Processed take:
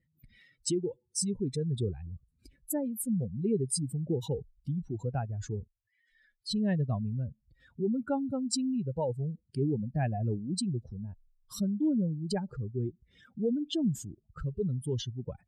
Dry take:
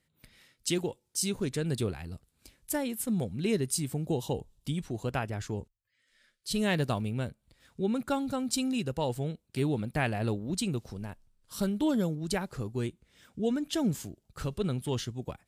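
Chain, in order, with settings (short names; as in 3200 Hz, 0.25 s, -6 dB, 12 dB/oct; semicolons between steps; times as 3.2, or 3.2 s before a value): spectral contrast raised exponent 2.4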